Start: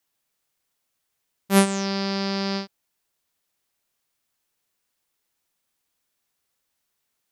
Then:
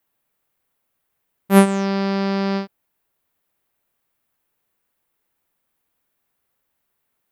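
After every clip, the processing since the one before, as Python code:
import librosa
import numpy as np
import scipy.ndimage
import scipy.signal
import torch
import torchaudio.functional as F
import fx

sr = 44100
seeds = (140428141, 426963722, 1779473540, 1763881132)

y = fx.peak_eq(x, sr, hz=5700.0, db=-13.0, octaves=1.8)
y = F.gain(torch.from_numpy(y), 6.0).numpy()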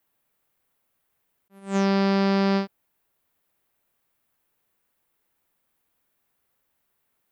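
y = fx.attack_slew(x, sr, db_per_s=190.0)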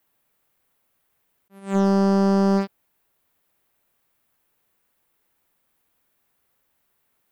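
y = fx.slew_limit(x, sr, full_power_hz=110.0)
y = F.gain(torch.from_numpy(y), 3.5).numpy()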